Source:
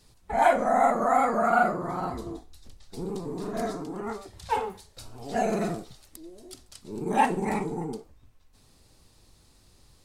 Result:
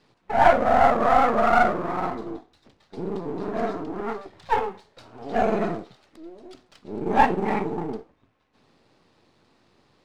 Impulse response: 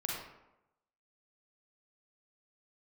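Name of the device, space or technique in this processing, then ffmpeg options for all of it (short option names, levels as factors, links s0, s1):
crystal radio: -af "highpass=200,lowpass=2600,aeval=exprs='if(lt(val(0),0),0.447*val(0),val(0))':c=same,volume=2.24"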